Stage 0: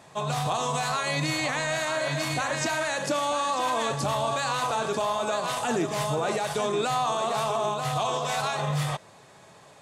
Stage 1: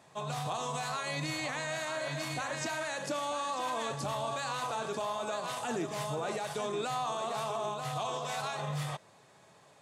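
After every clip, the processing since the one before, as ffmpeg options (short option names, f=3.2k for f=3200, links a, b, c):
-af "highpass=75,volume=-8dB"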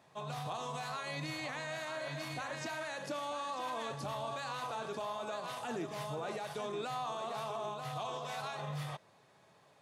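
-af "equalizer=f=7.7k:w=1.9:g=-7,volume=-4.5dB"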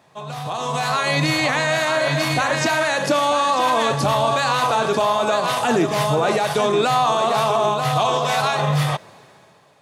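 -af "dynaudnorm=f=130:g=11:m=12dB,volume=9dB"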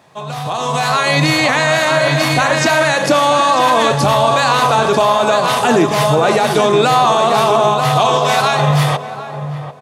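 -filter_complex "[0:a]asplit=2[a][b];[b]adelay=743,lowpass=f=1k:p=1,volume=-10dB,asplit=2[c][d];[d]adelay=743,lowpass=f=1k:p=1,volume=0.27,asplit=2[e][f];[f]adelay=743,lowpass=f=1k:p=1,volume=0.27[g];[a][c][e][g]amix=inputs=4:normalize=0,volume=6dB"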